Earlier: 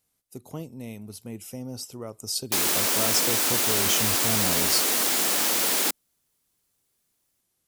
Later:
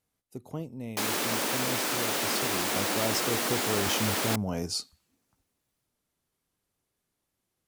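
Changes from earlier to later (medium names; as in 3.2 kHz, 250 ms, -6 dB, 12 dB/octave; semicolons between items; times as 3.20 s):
background: entry -1.55 s; master: add treble shelf 3.9 kHz -10.5 dB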